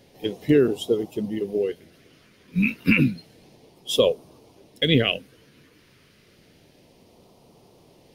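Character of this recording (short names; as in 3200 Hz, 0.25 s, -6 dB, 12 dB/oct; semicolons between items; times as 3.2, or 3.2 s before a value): phasing stages 2, 0.3 Hz, lowest notch 770–1600 Hz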